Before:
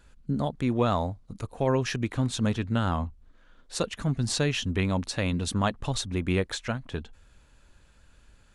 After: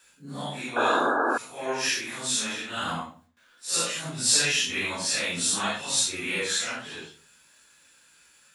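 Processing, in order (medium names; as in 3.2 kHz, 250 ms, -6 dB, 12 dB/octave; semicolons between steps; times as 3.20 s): phase randomisation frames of 200 ms; RIAA curve recording; gate with hold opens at -54 dBFS; 0.58–2.68 s: bass shelf 190 Hz -11 dB; reverberation RT60 0.40 s, pre-delay 12 ms, DRR 5 dB; 0.76–1.38 s: painted sound noise 230–1700 Hz -24 dBFS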